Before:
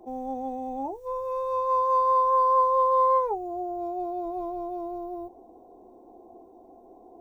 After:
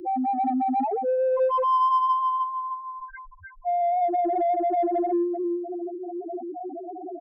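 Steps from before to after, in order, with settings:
time-frequency box erased 0:02.12–0:03.68, 240–1,400 Hz
leveller curve on the samples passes 5
repeating echo 309 ms, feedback 37%, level −4.5 dB
spectral peaks only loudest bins 1
in parallel at −6.5 dB: soft clipping −25.5 dBFS, distortion −12 dB
on the sum: multiband upward and downward compressor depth 40%

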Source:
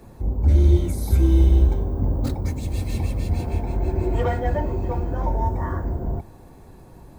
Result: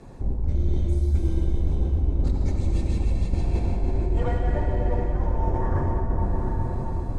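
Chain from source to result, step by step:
sub-octave generator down 2 octaves, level 0 dB
convolution reverb RT60 5.3 s, pre-delay 67 ms, DRR −1 dB
reversed playback
downward compressor 6 to 1, threshold −19 dBFS, peak gain reduction 16 dB
reversed playback
low-pass filter 8,700 Hz 24 dB per octave

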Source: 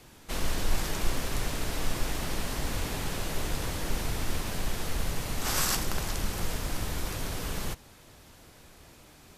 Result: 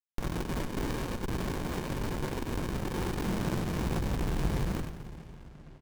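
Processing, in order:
comb filter 5.6 ms, depth 88%
downward compressor 8 to 1, threshold −29 dBFS, peak gain reduction 15.5 dB
pitch-shifted copies added −12 semitones −13 dB
high-pass filter sweep 1,000 Hz → 60 Hz, 0:04.15–0:06.39
time stretch by overlap-add 0.62×, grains 43 ms
bit-depth reduction 6 bits, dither none
Butterworth band-reject 4,000 Hz, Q 3.4
single-tap delay 94 ms −7 dB
on a send at −10 dB: convolution reverb RT60 5.0 s, pre-delay 105 ms
on the sum: windowed peak hold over 65 samples
level +7 dB

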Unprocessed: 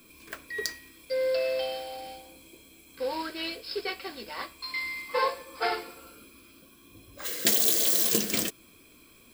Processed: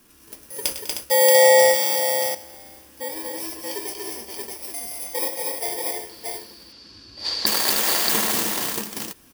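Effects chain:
samples in bit-reversed order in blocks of 32 samples
0:00.65–0:01.72: leveller curve on the samples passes 3
0:06.09–0:07.46: low-pass with resonance 4,600 Hz, resonance Q 15
on a send: multi-tap delay 102/121/199/238/309/629 ms −12/−18/−14.5/−3.5/−8/−3.5 dB

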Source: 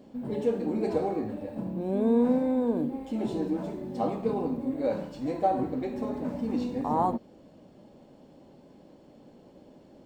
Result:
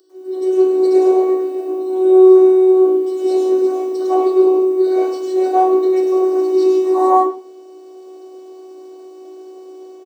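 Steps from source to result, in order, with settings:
stylus tracing distortion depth 0.031 ms
low-shelf EQ 400 Hz +8 dB
comb filter 4.4 ms, depth 56%
automatic gain control gain up to 8 dB
phases set to zero 374 Hz
elliptic high-pass filter 290 Hz
spectral tilt +4.5 dB per octave
convolution reverb RT60 0.45 s, pre-delay 95 ms, DRR −11 dB
level −10 dB

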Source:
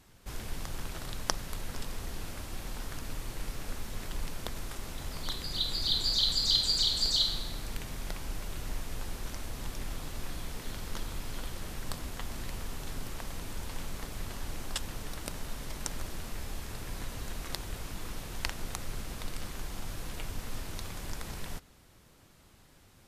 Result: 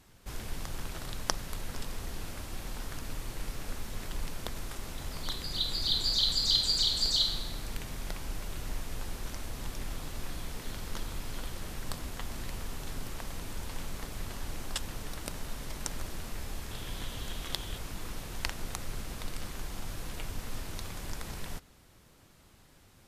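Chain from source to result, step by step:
0:16.71–0:17.78: parametric band 3,300 Hz +10.5 dB 0.33 octaves

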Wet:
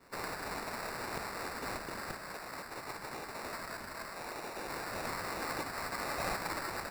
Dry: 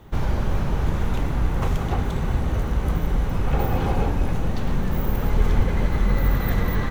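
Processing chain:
gate on every frequency bin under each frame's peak −25 dB weak
high-shelf EQ 2,100 Hz +9.5 dB, from 0:02.15 +2 dB, from 0:04.68 +8.5 dB
sample-rate reduction 3,200 Hz, jitter 0%
level −5.5 dB

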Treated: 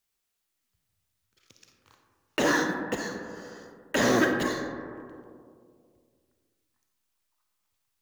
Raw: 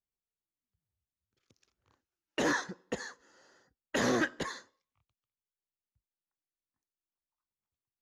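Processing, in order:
one scale factor per block 5 bits
convolution reverb RT60 2.1 s, pre-delay 10 ms, DRR 3.5 dB
one half of a high-frequency compander encoder only
level +5 dB

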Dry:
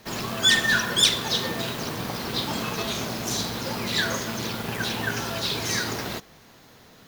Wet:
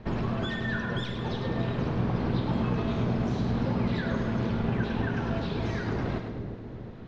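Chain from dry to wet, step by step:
downward compressor 3 to 1, threshold −32 dBFS, peak gain reduction 14 dB
low-pass filter 3,200 Hz 12 dB per octave
spectral tilt −3.5 dB per octave
on a send: echo with a time of its own for lows and highs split 560 Hz, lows 360 ms, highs 104 ms, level −6.5 dB

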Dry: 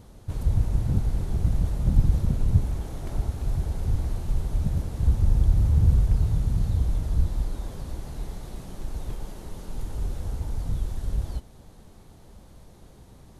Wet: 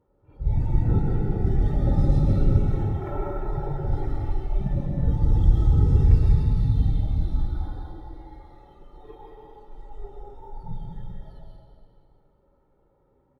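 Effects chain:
noise reduction from a noise print of the clip's start 23 dB
high-pass filter 55 Hz 6 dB per octave
parametric band 74 Hz −10.5 dB 1.7 octaves
notch filter 510 Hz, Q 12
comb filter 2.2 ms, depth 70%
hollow resonant body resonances 240/550/1,300 Hz, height 8 dB
in parallel at +1 dB: downward compressor, threshold −26 dBFS, peak gain reduction 8.5 dB
on the sum: low-pass that shuts in the quiet parts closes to 1,200 Hz, open at −11 dBFS
on a send: backwards echo 51 ms −8.5 dB
on the sum: dense smooth reverb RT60 2.3 s, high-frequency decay 0.9×, pre-delay 105 ms, DRR −1.5 dB
linearly interpolated sample-rate reduction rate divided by 3×

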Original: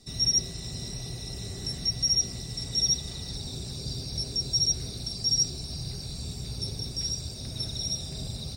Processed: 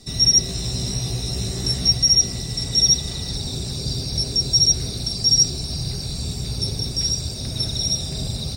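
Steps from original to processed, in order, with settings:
0:00.47–0:01.98: double-tracking delay 16 ms −2.5 dB
level +9 dB

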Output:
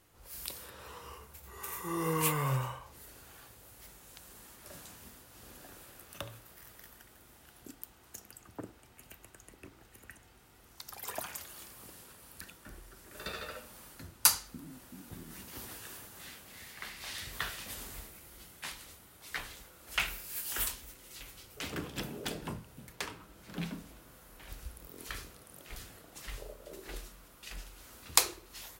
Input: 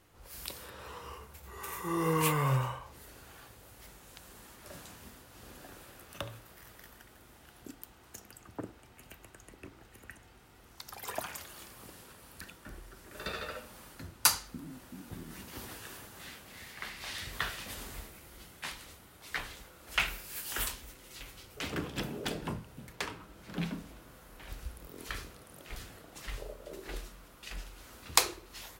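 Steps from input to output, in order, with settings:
high-shelf EQ 6,000 Hz +6.5 dB
level −3 dB

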